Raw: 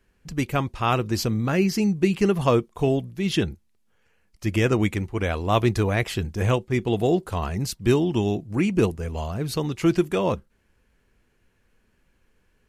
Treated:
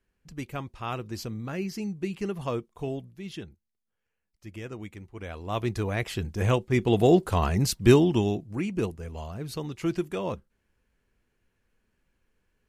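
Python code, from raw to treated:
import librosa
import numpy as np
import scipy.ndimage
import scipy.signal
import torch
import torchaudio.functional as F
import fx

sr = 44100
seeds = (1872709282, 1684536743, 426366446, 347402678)

y = fx.gain(x, sr, db=fx.line((3.06, -11.0), (3.49, -18.0), (4.9, -18.0), (5.67, -8.0), (7.16, 2.5), (7.95, 2.5), (8.63, -8.0)))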